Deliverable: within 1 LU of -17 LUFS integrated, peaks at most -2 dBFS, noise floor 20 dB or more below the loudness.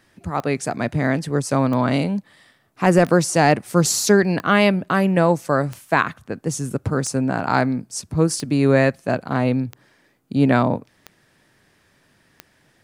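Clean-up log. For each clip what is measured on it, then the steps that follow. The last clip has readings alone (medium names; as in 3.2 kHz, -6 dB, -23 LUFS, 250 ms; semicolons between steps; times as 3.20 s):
clicks found 10; loudness -20.0 LUFS; peak level -2.5 dBFS; loudness target -17.0 LUFS
-> de-click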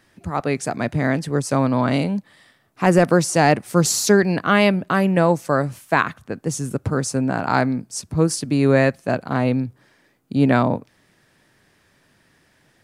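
clicks found 0; loudness -20.0 LUFS; peak level -2.5 dBFS; loudness target -17.0 LUFS
-> trim +3 dB; peak limiter -2 dBFS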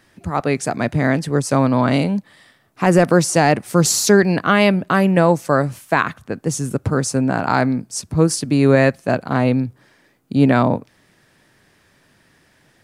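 loudness -17.5 LUFS; peak level -2.0 dBFS; noise floor -57 dBFS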